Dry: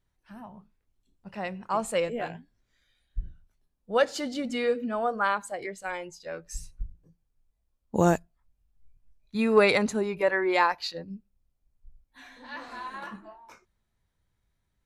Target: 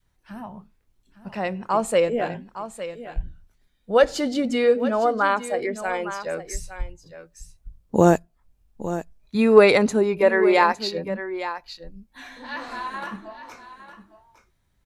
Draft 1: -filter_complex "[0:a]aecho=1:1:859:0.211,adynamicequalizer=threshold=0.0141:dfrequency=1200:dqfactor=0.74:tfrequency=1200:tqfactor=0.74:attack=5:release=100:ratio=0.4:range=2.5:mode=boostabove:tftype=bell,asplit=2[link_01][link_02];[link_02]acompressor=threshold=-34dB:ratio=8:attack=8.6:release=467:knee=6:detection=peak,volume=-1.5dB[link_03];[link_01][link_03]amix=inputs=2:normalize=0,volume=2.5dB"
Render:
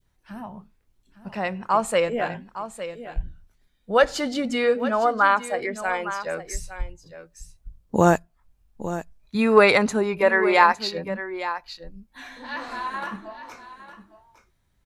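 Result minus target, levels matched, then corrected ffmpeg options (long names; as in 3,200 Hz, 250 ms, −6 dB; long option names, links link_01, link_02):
1,000 Hz band +3.0 dB
-filter_complex "[0:a]aecho=1:1:859:0.211,adynamicequalizer=threshold=0.0141:dfrequency=400:dqfactor=0.74:tfrequency=400:tqfactor=0.74:attack=5:release=100:ratio=0.4:range=2.5:mode=boostabove:tftype=bell,asplit=2[link_01][link_02];[link_02]acompressor=threshold=-34dB:ratio=8:attack=8.6:release=467:knee=6:detection=peak,volume=-1.5dB[link_03];[link_01][link_03]amix=inputs=2:normalize=0,volume=2.5dB"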